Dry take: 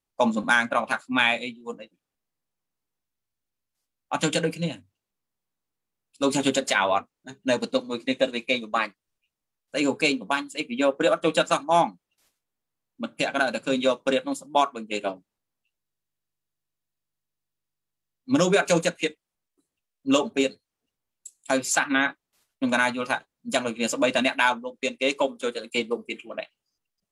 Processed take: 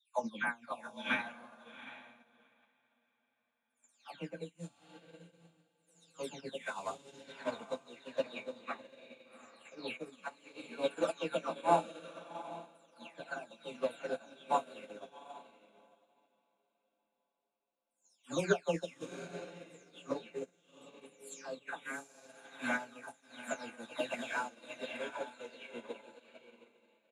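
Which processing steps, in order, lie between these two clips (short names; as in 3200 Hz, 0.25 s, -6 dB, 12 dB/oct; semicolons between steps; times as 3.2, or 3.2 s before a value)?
spectral delay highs early, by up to 0.439 s; doubler 29 ms -13 dB; on a send: diffused feedback echo 0.78 s, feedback 43%, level -3.5 dB; on the sum: upward expander 2.5:1, over -38 dBFS; gain -6.5 dB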